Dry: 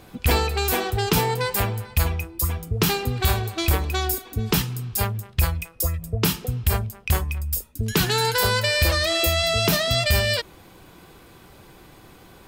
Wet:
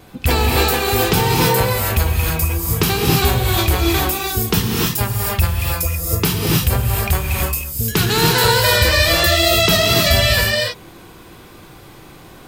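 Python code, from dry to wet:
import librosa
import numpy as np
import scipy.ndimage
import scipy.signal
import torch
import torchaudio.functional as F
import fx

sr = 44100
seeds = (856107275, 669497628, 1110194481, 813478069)

y = fx.wow_flutter(x, sr, seeds[0], rate_hz=2.1, depth_cents=57.0)
y = fx.rev_gated(y, sr, seeds[1], gate_ms=340, shape='rising', drr_db=-2.0)
y = F.gain(torch.from_numpy(y), 3.0).numpy()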